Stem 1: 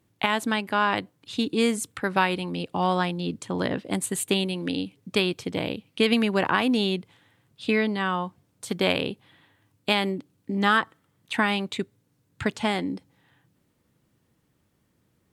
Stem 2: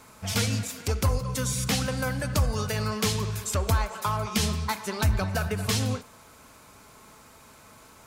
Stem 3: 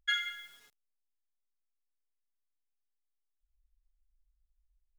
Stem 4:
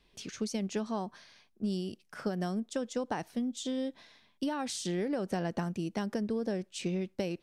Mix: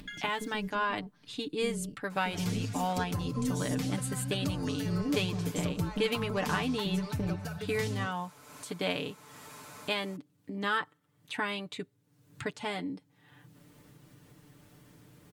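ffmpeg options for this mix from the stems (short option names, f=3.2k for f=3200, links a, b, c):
-filter_complex "[0:a]volume=-10dB,asplit=2[a][b];[1:a]highpass=100,acrossover=split=240[c][d];[d]acompressor=threshold=-37dB:ratio=4[e];[c][e]amix=inputs=2:normalize=0,adelay=2100,volume=-6dB[f];[2:a]acompressor=threshold=-39dB:ratio=3,volume=-5dB[g];[3:a]bass=f=250:g=11,treble=f=4k:g=-3,tremolo=f=220:d=0.824,equalizer=f=220:t=o:w=0.9:g=12,volume=-2dB[h];[b]apad=whole_len=327300[i];[h][i]sidechaincompress=threshold=-42dB:ratio=8:attack=16:release=861[j];[a][f][g][j]amix=inputs=4:normalize=0,aecho=1:1:6.8:0.66,acompressor=mode=upward:threshold=-39dB:ratio=2.5"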